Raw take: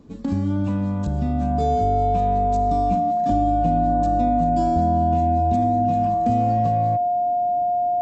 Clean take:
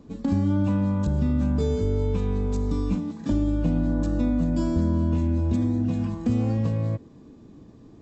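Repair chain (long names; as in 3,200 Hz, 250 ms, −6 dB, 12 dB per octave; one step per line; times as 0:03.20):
notch filter 710 Hz, Q 30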